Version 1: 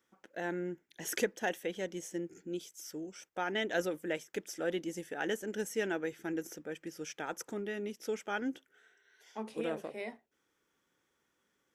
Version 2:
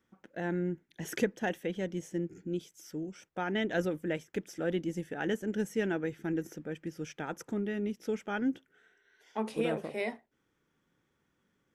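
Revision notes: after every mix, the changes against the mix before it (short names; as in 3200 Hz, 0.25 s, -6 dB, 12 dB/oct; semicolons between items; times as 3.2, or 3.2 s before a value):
first voice: add tone controls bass +13 dB, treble -6 dB; second voice +7.0 dB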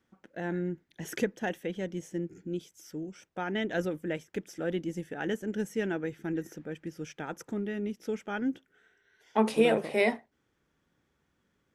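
second voice +9.0 dB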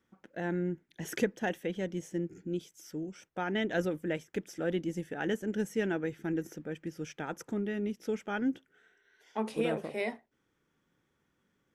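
second voice -8.5 dB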